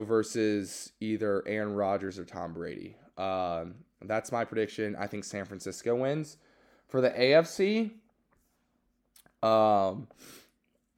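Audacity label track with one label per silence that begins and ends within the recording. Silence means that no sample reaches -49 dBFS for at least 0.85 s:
7.980000	9.160000	silence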